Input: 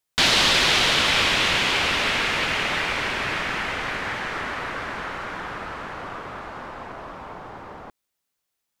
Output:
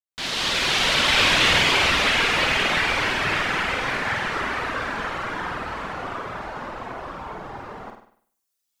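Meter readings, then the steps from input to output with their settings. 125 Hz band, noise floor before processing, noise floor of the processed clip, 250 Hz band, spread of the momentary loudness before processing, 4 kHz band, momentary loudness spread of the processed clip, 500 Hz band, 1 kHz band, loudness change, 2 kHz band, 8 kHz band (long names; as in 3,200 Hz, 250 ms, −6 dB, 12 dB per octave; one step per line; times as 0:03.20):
+2.0 dB, −80 dBFS, −78 dBFS, +1.5 dB, 20 LU, 0.0 dB, 18 LU, +1.5 dB, +2.0 dB, +0.5 dB, +1.5 dB, −1.0 dB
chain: fade in at the beginning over 1.51 s
reverb reduction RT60 1.4 s
flutter between parallel walls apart 8.5 metres, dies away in 0.57 s
level +5 dB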